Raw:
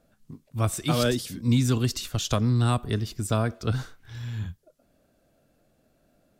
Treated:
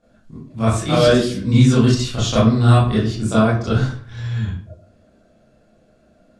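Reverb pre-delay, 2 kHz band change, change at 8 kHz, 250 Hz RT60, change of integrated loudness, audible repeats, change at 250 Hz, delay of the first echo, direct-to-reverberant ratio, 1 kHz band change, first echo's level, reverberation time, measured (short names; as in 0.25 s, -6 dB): 23 ms, +9.5 dB, +3.5 dB, 0.60 s, +9.5 dB, none, +10.5 dB, none, -10.0 dB, +9.5 dB, none, 0.50 s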